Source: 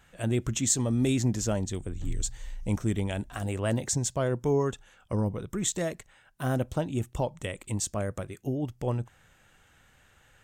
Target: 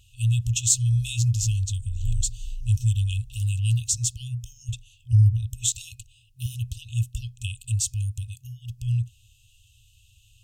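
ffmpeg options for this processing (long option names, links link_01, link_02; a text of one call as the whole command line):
ffmpeg -i in.wav -af "asetnsamples=nb_out_samples=441:pad=0,asendcmd='4.69 equalizer g 13;6.46 equalizer g 5',equalizer=frequency=140:width_type=o:width=1.4:gain=6,afftfilt=real='re*(1-between(b*sr/4096,120,2500))':imag='im*(1-between(b*sr/4096,120,2500))':win_size=4096:overlap=0.75,volume=5.5dB" out.wav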